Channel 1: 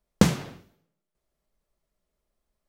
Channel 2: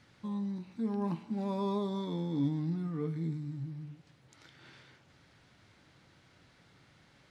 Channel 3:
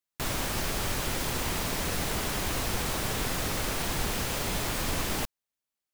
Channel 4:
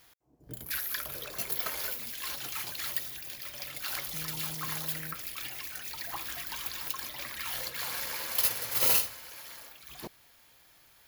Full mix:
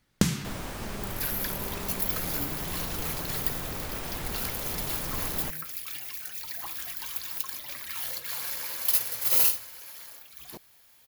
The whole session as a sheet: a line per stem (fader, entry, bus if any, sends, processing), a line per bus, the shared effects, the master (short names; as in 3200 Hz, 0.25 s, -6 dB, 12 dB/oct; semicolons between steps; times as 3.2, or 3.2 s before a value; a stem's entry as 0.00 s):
+2.5 dB, 0.00 s, no send, bell 610 Hz -14.5 dB 1.3 oct; compressor, threshold -21 dBFS, peak gain reduction 8 dB
-10.5 dB, 0.00 s, no send, dry
-4.5 dB, 0.25 s, no send, high shelf 3100 Hz -11.5 dB
-3.0 dB, 0.50 s, no send, dry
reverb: off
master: high shelf 6100 Hz +7 dB